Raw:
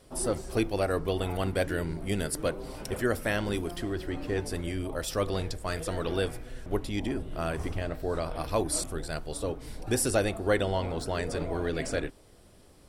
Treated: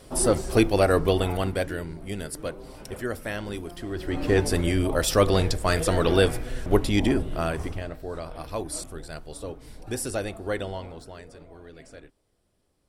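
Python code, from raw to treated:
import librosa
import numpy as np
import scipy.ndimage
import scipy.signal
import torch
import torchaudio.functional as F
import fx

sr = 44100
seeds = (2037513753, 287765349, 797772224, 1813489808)

y = fx.gain(x, sr, db=fx.line((1.08, 8.0), (1.9, -3.0), (3.79, -3.0), (4.29, 9.5), (7.11, 9.5), (8.01, -3.5), (10.65, -3.5), (11.39, -15.5)))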